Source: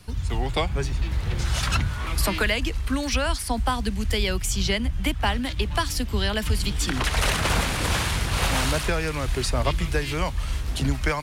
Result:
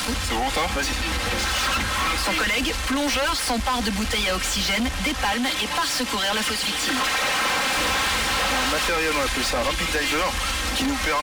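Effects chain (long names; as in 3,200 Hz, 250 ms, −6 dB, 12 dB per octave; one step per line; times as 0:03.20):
linear delta modulator 64 kbit/s, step −36.5 dBFS
comb filter 3.8 ms, depth 96%
downward compressor, threshold −26 dBFS, peak gain reduction 11.5 dB
0:05.32–0:07.76: high-pass filter 270 Hz 6 dB per octave
mid-hump overdrive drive 30 dB, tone 5,900 Hz, clips at −15.5 dBFS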